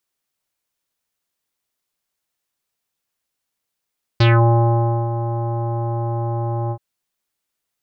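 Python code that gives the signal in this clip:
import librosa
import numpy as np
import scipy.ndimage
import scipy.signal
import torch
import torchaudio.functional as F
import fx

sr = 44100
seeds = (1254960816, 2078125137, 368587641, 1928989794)

y = fx.sub_voice(sr, note=46, wave='square', cutoff_hz=900.0, q=3.0, env_oct=2.5, env_s=0.21, attack_ms=6.4, decay_s=0.88, sustain_db=-11.0, release_s=0.07, note_s=2.51, slope=24)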